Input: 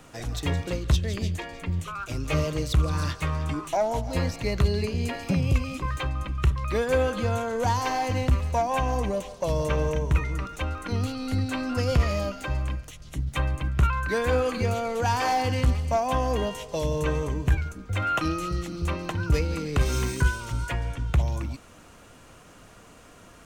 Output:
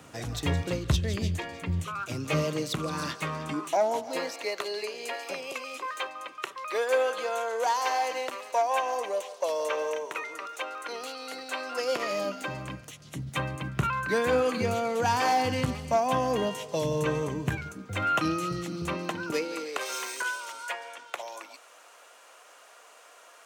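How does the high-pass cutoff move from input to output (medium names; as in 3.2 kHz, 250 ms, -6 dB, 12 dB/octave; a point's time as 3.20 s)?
high-pass 24 dB/octave
1.71 s 75 Hz
2.61 s 170 Hz
3.52 s 170 Hz
4.53 s 440 Hz
11.72 s 440 Hz
12.73 s 120 Hz
18.86 s 120 Hz
19.87 s 530 Hz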